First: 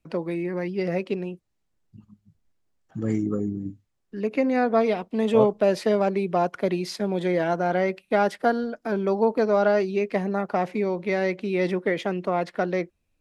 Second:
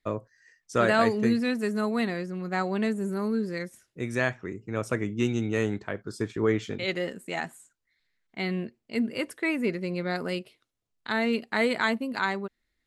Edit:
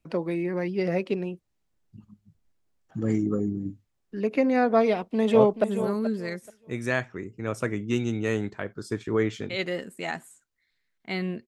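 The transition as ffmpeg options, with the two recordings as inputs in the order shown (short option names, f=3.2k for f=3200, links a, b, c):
-filter_complex "[0:a]apad=whole_dur=11.47,atrim=end=11.47,atrim=end=5.642[a];[1:a]atrim=start=2.928:end=8.76[b];[a][b]acrossfade=d=0.004:c1=hsin:c2=hsin,asplit=2[c][d];[d]afade=t=in:st=4.88:d=0.01,afade=t=out:st=5.64:d=0.01,aecho=0:1:430|860|1290:0.266073|0.0532145|0.0106429[e];[c][e]amix=inputs=2:normalize=0"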